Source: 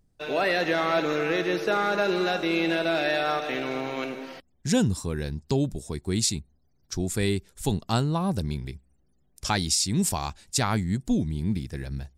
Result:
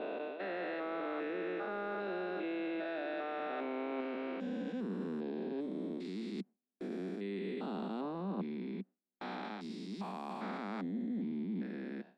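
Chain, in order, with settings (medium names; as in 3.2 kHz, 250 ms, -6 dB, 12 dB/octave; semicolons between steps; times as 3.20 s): spectrogram pixelated in time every 400 ms; steep high-pass 190 Hz 72 dB/octave; gate with hold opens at -39 dBFS; reverse; compression, threshold -37 dBFS, peak gain reduction 13 dB; reverse; saturation -26 dBFS, distortion -31 dB; distance through air 420 m; trim +2.5 dB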